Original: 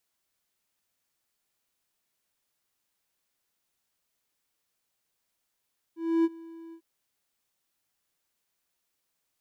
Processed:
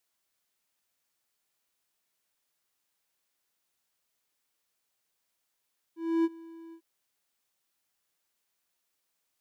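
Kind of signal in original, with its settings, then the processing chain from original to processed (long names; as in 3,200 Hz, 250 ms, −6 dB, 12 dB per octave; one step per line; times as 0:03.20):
note with an ADSR envelope triangle 330 Hz, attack 285 ms, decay 37 ms, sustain −23 dB, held 0.77 s, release 79 ms −17 dBFS
low-shelf EQ 260 Hz −5.5 dB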